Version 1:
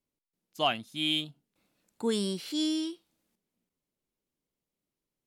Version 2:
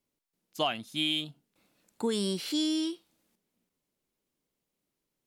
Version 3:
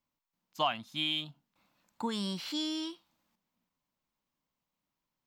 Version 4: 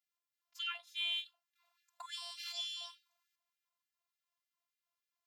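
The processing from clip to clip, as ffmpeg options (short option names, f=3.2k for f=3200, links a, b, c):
-af "lowshelf=f=140:g=-4,acompressor=threshold=-30dB:ratio=6,volume=4.5dB"
-af "equalizer=f=400:t=o:w=0.67:g=-11,equalizer=f=1k:t=o:w=0.67:g=8,equalizer=f=10k:t=o:w=0.67:g=-12,volume=-2dB"
-af "afftfilt=real='hypot(re,im)*cos(PI*b)':imag='0':win_size=512:overlap=0.75,afftfilt=real='re*gte(b*sr/1024,550*pow(1500/550,0.5+0.5*sin(2*PI*3.4*pts/sr)))':imag='im*gte(b*sr/1024,550*pow(1500/550,0.5+0.5*sin(2*PI*3.4*pts/sr)))':win_size=1024:overlap=0.75"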